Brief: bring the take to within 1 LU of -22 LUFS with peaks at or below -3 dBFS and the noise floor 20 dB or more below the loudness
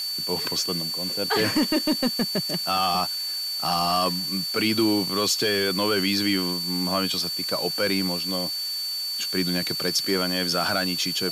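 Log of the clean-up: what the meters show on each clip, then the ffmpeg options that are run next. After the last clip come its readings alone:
steady tone 4500 Hz; tone level -27 dBFS; noise floor -30 dBFS; noise floor target -44 dBFS; loudness -23.5 LUFS; peak -11.0 dBFS; loudness target -22.0 LUFS
-> -af "bandreject=f=4.5k:w=30"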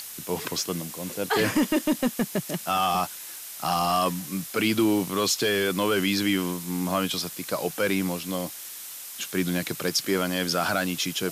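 steady tone none; noise floor -40 dBFS; noise floor target -46 dBFS
-> -af "afftdn=nr=6:nf=-40"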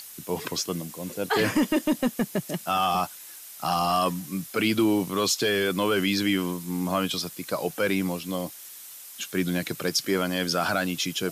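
noise floor -44 dBFS; noise floor target -47 dBFS
-> -af "afftdn=nr=6:nf=-44"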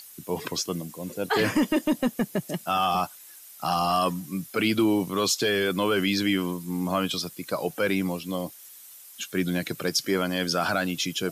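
noise floor -47 dBFS; loudness -26.5 LUFS; peak -11.5 dBFS; loudness target -22.0 LUFS
-> -af "volume=4.5dB"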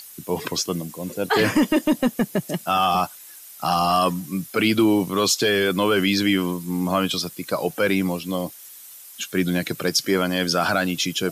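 loudness -22.0 LUFS; peak -7.0 dBFS; noise floor -43 dBFS

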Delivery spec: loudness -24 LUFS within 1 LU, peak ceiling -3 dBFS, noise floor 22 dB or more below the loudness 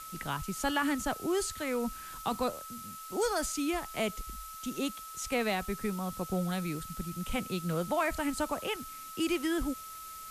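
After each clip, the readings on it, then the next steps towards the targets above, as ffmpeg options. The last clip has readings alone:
steady tone 1300 Hz; tone level -44 dBFS; noise floor -45 dBFS; noise floor target -56 dBFS; loudness -34.0 LUFS; peak -19.5 dBFS; loudness target -24.0 LUFS
-> -af "bandreject=f=1.3k:w=30"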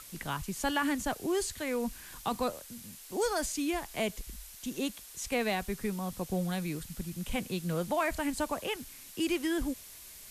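steady tone none; noise floor -50 dBFS; noise floor target -56 dBFS
-> -af "afftdn=nr=6:nf=-50"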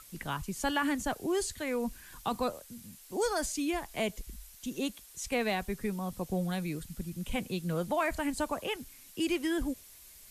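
noise floor -54 dBFS; noise floor target -56 dBFS
-> -af "afftdn=nr=6:nf=-54"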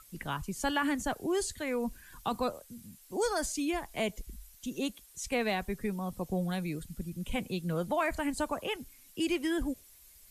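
noise floor -58 dBFS; loudness -34.0 LUFS; peak -19.5 dBFS; loudness target -24.0 LUFS
-> -af "volume=10dB"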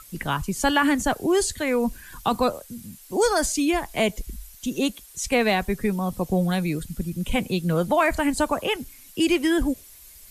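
loudness -24.0 LUFS; peak -9.5 dBFS; noise floor -48 dBFS

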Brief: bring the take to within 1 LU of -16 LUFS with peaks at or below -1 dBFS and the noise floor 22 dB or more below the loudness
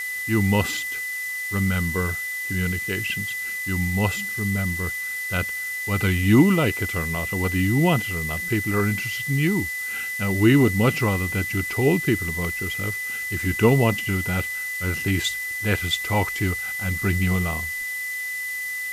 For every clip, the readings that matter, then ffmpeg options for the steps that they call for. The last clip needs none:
steady tone 2000 Hz; tone level -27 dBFS; noise floor -30 dBFS; noise floor target -45 dBFS; loudness -23.0 LUFS; peak -5.0 dBFS; loudness target -16.0 LUFS
-> -af "bandreject=f=2k:w=30"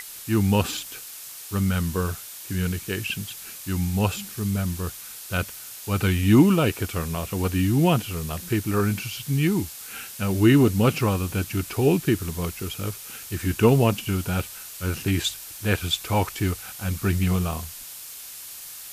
steady tone none; noise floor -40 dBFS; noise floor target -46 dBFS
-> -af "afftdn=nr=6:nf=-40"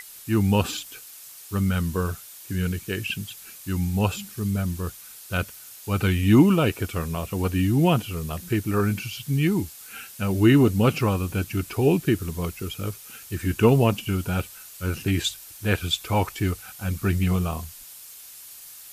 noise floor -44 dBFS; noise floor target -47 dBFS
-> -af "afftdn=nr=6:nf=-44"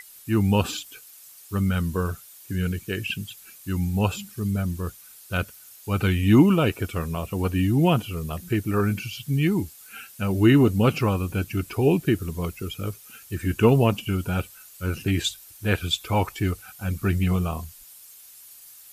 noise floor -48 dBFS; loudness -24.5 LUFS; peak -5.5 dBFS; loudness target -16.0 LUFS
-> -af "volume=8.5dB,alimiter=limit=-1dB:level=0:latency=1"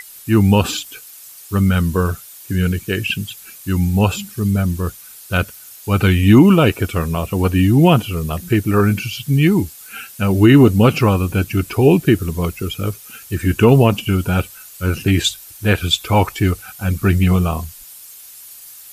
loudness -16.5 LUFS; peak -1.0 dBFS; noise floor -39 dBFS

